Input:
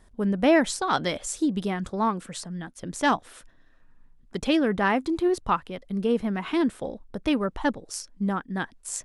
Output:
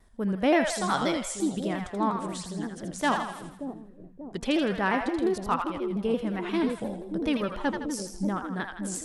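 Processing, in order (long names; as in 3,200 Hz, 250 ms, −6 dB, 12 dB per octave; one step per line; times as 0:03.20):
on a send: echo with a time of its own for lows and highs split 560 Hz, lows 582 ms, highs 81 ms, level −5.5 dB
on the sum: pitch modulation by a square or saw wave saw down 5.7 Hz, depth 100 cents
level −3.5 dB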